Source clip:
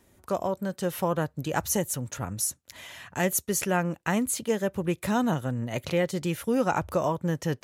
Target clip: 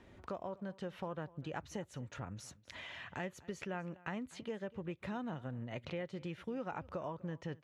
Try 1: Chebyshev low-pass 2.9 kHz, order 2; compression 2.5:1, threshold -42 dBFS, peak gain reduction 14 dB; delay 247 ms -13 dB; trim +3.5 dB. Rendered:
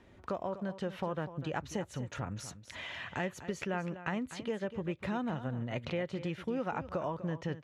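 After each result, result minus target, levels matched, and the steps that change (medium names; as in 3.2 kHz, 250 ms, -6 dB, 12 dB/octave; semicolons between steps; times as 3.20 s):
compression: peak gain reduction -6 dB; echo-to-direct +8 dB
change: compression 2.5:1, threshold -52 dBFS, peak gain reduction 20 dB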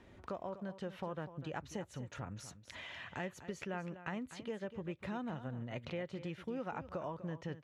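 echo-to-direct +8 dB
change: delay 247 ms -21 dB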